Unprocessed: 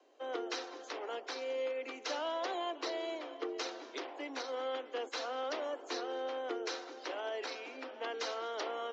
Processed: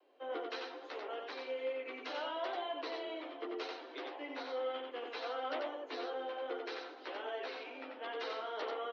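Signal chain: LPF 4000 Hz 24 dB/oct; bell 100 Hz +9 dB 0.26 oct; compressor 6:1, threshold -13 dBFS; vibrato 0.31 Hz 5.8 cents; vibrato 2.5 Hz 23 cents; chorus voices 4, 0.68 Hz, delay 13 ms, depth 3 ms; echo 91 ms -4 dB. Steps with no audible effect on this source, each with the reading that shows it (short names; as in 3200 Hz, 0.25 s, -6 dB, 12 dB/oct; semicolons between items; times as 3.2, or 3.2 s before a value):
bell 100 Hz: input band starts at 230 Hz; compressor, threshold -13 dBFS: input peak -23.5 dBFS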